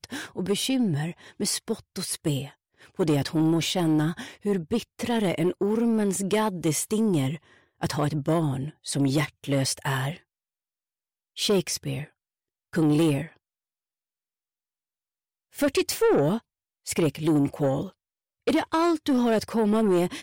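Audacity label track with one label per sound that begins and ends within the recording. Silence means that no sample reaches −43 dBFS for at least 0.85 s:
11.370000	13.290000	sound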